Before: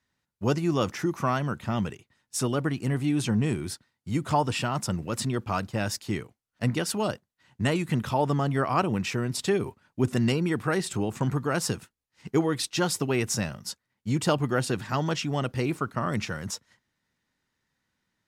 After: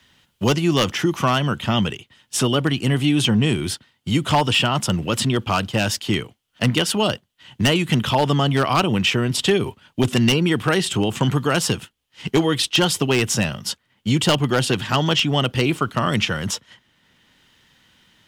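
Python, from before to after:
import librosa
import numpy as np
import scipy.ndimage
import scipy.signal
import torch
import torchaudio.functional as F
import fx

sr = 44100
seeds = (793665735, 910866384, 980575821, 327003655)

y = fx.peak_eq(x, sr, hz=3100.0, db=13.5, octaves=0.44)
y = 10.0 ** (-15.5 / 20.0) * (np.abs((y / 10.0 ** (-15.5 / 20.0) + 3.0) % 4.0 - 2.0) - 1.0)
y = fx.band_squash(y, sr, depth_pct=40)
y = F.gain(torch.from_numpy(y), 7.0).numpy()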